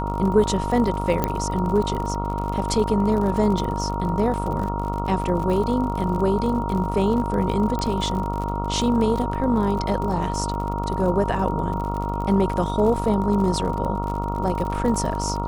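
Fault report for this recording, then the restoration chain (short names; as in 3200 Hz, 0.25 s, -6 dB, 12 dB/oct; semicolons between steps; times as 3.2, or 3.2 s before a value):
buzz 50 Hz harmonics 28 -27 dBFS
crackle 48/s -28 dBFS
tone 940 Hz -28 dBFS
1.24 pop -7 dBFS
7.79 pop -14 dBFS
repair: de-click; notch 940 Hz, Q 30; de-hum 50 Hz, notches 28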